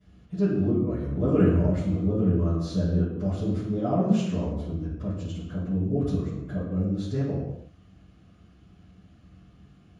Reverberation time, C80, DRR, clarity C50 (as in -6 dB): no single decay rate, 3.5 dB, -18.0 dB, 1.0 dB